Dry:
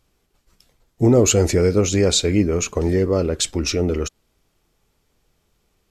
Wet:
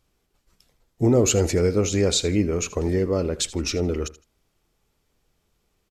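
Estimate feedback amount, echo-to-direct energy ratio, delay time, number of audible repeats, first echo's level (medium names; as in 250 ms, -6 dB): 24%, -18.0 dB, 80 ms, 2, -18.0 dB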